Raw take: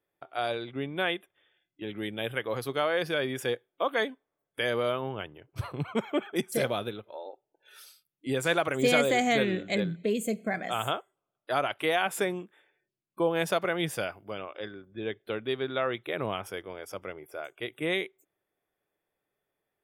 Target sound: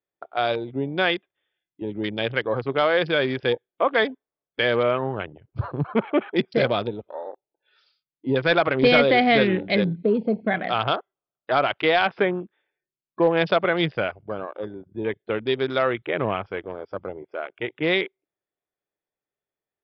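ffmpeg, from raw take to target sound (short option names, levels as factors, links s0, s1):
-af "afwtdn=0.00891,asoftclip=type=hard:threshold=0.141,aresample=11025,aresample=44100,volume=2.37"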